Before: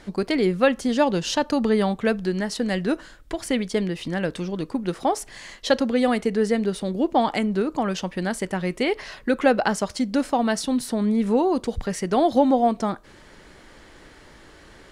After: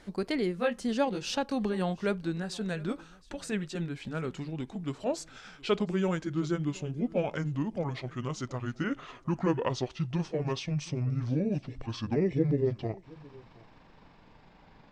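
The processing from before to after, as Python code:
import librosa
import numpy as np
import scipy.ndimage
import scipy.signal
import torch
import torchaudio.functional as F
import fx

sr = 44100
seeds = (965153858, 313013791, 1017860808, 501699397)

y = fx.pitch_glide(x, sr, semitones=-12.0, runs='starting unshifted')
y = y + 10.0 ** (-23.0 / 20.0) * np.pad(y, (int(718 * sr / 1000.0), 0))[:len(y)]
y = F.gain(torch.from_numpy(y), -7.5).numpy()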